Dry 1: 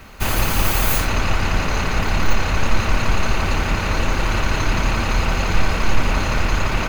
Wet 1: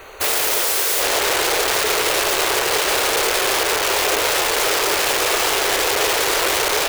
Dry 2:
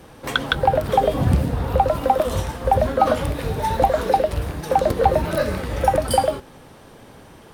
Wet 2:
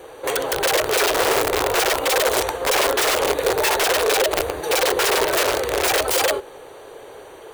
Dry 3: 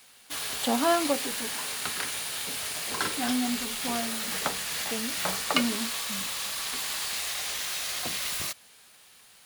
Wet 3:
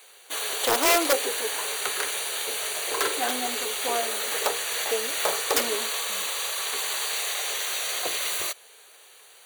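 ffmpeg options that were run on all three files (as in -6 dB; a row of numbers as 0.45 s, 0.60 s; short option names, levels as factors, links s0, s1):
-af "asuperstop=centerf=5200:order=20:qfactor=5.7,aeval=exprs='(mod(7.94*val(0)+1,2)-1)/7.94':c=same,lowshelf=f=300:t=q:w=3:g=-11.5,volume=1.5"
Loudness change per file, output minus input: +4.0 LU, +1.5 LU, +3.5 LU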